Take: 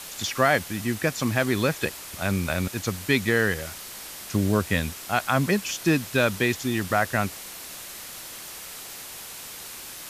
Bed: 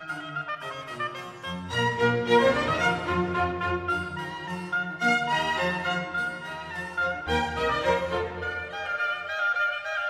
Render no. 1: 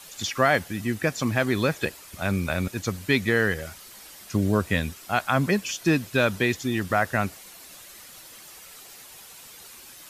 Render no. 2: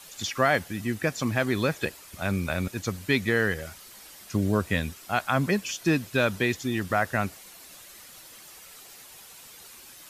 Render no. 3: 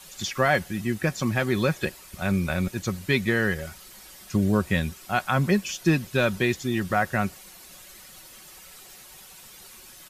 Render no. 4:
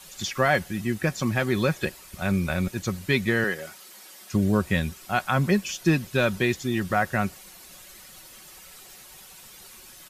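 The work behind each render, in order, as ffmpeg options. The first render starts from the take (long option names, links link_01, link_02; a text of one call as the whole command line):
ffmpeg -i in.wav -af "afftdn=noise_reduction=9:noise_floor=-40" out.wav
ffmpeg -i in.wav -af "volume=-2dB" out.wav
ffmpeg -i in.wav -af "lowshelf=frequency=120:gain=8.5,aecho=1:1:5.4:0.38" out.wav
ffmpeg -i in.wav -filter_complex "[0:a]asettb=1/sr,asplit=3[link_01][link_02][link_03];[link_01]atrim=end=3.444[link_04];[link_02]atrim=start=3.44:end=4.33,asetpts=PTS-STARTPTS,afade=type=in:duration=0.004:curve=qsin,afade=type=out:start_time=0.886:duration=0.004:curve=qsin,highpass=260[link_05];[link_03]atrim=start=4.326[link_06];[link_04][link_05]acrossfade=duration=0.004:curve1=hsin:curve2=qsin[link_07];[link_07][link_06]acrossfade=duration=0.004:curve1=qsin:curve2=hsin" out.wav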